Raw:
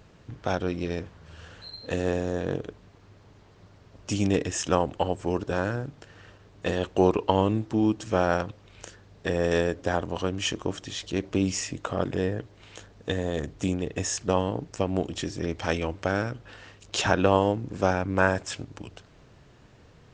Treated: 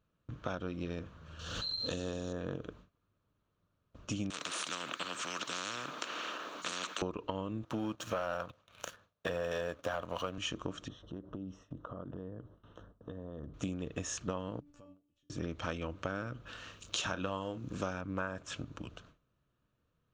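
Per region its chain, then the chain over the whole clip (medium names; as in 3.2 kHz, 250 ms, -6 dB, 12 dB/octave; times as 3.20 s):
1.39–2.33 s: resonant high shelf 3 kHz +9.5 dB, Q 1.5 + swell ahead of each attack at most 44 dB/s
4.30–7.02 s: high-pass 350 Hz 24 dB/octave + spectrum-flattening compressor 10:1
7.63–10.38 s: high-pass 63 Hz 24 dB/octave + resonant low shelf 450 Hz -7 dB, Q 1.5 + waveshaping leveller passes 2
10.88–13.54 s: compression 5:1, threshold -35 dBFS + boxcar filter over 19 samples
14.60–15.30 s: bass shelf 130 Hz +8 dB + feedback comb 290 Hz, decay 0.46 s, mix 90% + compression 5:1, threshold -50 dBFS
16.46–18.01 s: treble shelf 3 kHz +10 dB + doubling 32 ms -12 dB
whole clip: gate with hold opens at -41 dBFS; graphic EQ with 31 bands 100 Hz -4 dB, 400 Hz -6 dB, 800 Hz -9 dB, 1.25 kHz +6 dB, 2 kHz -8 dB, 5 kHz -9 dB, 8 kHz -10 dB; compression 6:1, threshold -31 dBFS; trim -2.5 dB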